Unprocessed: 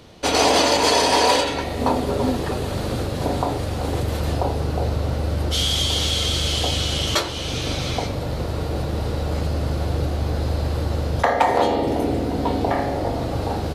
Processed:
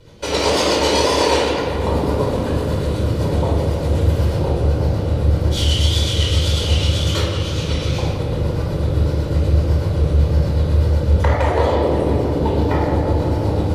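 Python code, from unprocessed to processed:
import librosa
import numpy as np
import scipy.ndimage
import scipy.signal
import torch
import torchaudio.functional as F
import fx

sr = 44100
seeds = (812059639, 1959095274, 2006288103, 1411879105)

p1 = fx.wow_flutter(x, sr, seeds[0], rate_hz=2.1, depth_cents=120.0)
p2 = fx.rotary(p1, sr, hz=8.0)
p3 = p2 + fx.echo_filtered(p2, sr, ms=170, feedback_pct=83, hz=2600.0, wet_db=-8.0, dry=0)
p4 = fx.room_shoebox(p3, sr, seeds[1], volume_m3=2300.0, walls='furnished', distance_m=4.8)
y = F.gain(torch.from_numpy(p4), -2.5).numpy()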